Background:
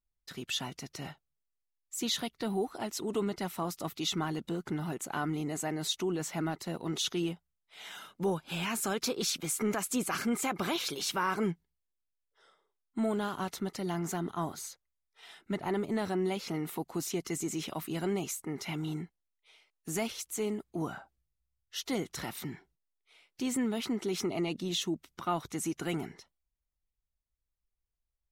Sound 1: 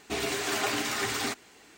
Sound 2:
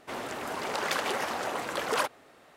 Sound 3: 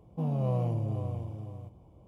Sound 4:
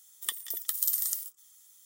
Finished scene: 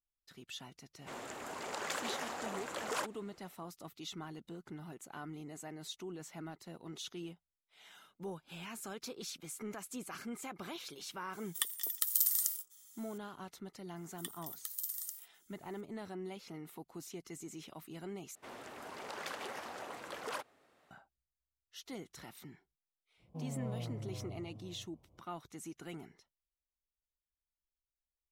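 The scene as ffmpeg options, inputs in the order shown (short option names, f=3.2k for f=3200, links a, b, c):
-filter_complex "[2:a]asplit=2[a][b];[4:a]asplit=2[c][d];[0:a]volume=-12.5dB[e];[a]equalizer=f=7.2k:t=o:w=0.3:g=8.5[f];[e]asplit=2[g][h];[g]atrim=end=18.354[i];[b]atrim=end=2.56,asetpts=PTS-STARTPTS,volume=-13dB[j];[h]atrim=start=20.906[k];[f]atrim=end=2.56,asetpts=PTS-STARTPTS,volume=-9.5dB,afade=t=in:d=0.004:c=hsin,afade=t=out:st=2.556:d=0.004:c=hsin,adelay=990[l];[c]atrim=end=1.85,asetpts=PTS-STARTPTS,volume=-2dB,afade=t=in:d=0.004:c=hsin,afade=t=out:st=1.846:d=0.004:c=hsin,adelay=11330[m];[d]atrim=end=1.85,asetpts=PTS-STARTPTS,volume=-12dB,afade=t=in:d=0.004:c=hsin,afade=t=out:st=1.846:d=0.004:c=hsin,adelay=615636S[n];[3:a]atrim=end=2.07,asetpts=PTS-STARTPTS,volume=-12dB,afade=t=in:d=0.05,afade=t=out:st=2.02:d=0.05,adelay=23170[o];[i][j]acrossfade=d=0.004:c1=hsin:c2=hsin[p];[p][k]acrossfade=d=0.004:c1=hsin:c2=hsin[q];[q][l][m][n][o]amix=inputs=5:normalize=0"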